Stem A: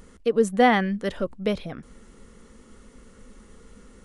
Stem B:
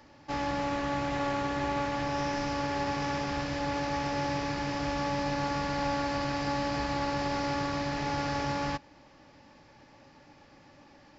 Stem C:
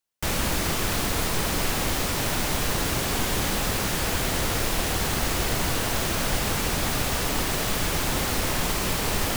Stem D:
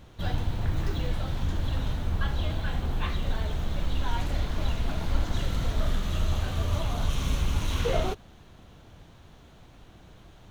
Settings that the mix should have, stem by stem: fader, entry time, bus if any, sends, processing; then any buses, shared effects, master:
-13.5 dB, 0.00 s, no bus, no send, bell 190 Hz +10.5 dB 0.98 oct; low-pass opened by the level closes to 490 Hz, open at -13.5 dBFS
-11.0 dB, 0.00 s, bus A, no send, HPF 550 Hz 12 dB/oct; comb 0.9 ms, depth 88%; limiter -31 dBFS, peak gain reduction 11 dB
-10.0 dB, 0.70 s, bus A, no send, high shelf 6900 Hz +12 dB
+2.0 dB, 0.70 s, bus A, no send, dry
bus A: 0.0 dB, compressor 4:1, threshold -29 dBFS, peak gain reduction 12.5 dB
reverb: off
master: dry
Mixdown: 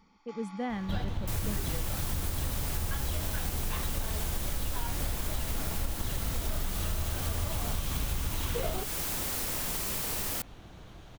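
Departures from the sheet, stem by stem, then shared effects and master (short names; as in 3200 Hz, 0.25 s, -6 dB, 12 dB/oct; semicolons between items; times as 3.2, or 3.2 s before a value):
stem A -13.5 dB -> -20.0 dB; stem C: entry 0.70 s -> 1.05 s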